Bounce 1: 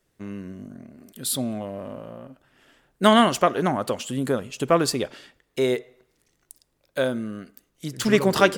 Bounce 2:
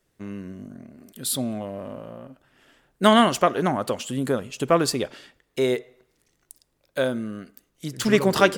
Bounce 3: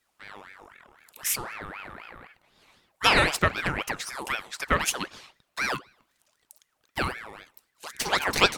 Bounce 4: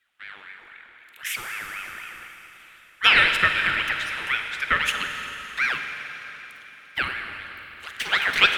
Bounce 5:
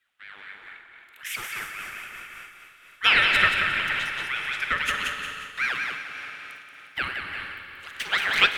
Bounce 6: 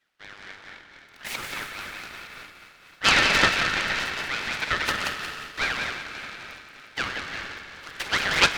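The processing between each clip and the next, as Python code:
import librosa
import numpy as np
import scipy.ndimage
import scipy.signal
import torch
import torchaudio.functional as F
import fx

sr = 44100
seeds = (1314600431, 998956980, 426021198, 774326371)

y1 = x
y2 = fx.peak_eq(y1, sr, hz=180.0, db=-13.0, octaves=2.5)
y2 = fx.ring_lfo(y2, sr, carrier_hz=1300.0, swing_pct=55, hz=3.9)
y2 = y2 * 10.0 ** (2.5 / 20.0)
y3 = fx.band_shelf(y2, sr, hz=2200.0, db=14.0, octaves=1.7)
y3 = fx.rev_schroeder(y3, sr, rt60_s=3.9, comb_ms=38, drr_db=4.5)
y3 = y3 * 10.0 ** (-8.0 / 20.0)
y4 = fx.echo_feedback(y3, sr, ms=179, feedback_pct=41, wet_db=-4.5)
y4 = fx.am_noise(y4, sr, seeds[0], hz=5.7, depth_pct=60)
y5 = fx.noise_mod_delay(y4, sr, seeds[1], noise_hz=1400.0, depth_ms=0.044)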